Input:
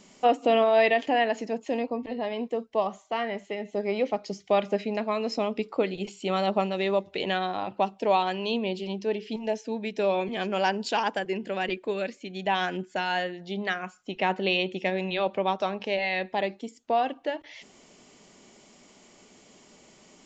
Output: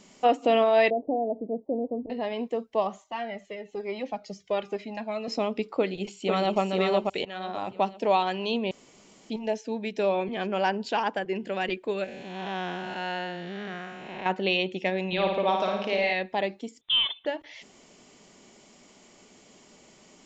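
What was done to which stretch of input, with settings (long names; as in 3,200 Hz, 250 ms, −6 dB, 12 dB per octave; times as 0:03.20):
0:00.90–0:02.10: Butterworth low-pass 670 Hz
0:03.04–0:05.28: flanger whose copies keep moving one way falling 1.1 Hz
0:05.79–0:06.60: delay throw 490 ms, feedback 35%, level −3.5 dB
0:07.25–0:07.69: fade in, from −18.5 dB
0:08.71–0:09.30: fill with room tone
0:10.09–0:11.35: low-pass filter 3,000 Hz 6 dB per octave
0:12.04–0:14.26: spectrum smeared in time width 339 ms
0:15.07–0:16.13: flutter between parallel walls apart 9.5 metres, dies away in 0.82 s
0:16.81–0:17.26: voice inversion scrambler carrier 3,800 Hz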